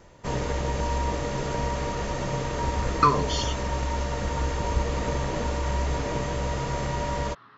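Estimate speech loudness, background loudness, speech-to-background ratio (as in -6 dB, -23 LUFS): -26.0 LUFS, -29.0 LUFS, 3.0 dB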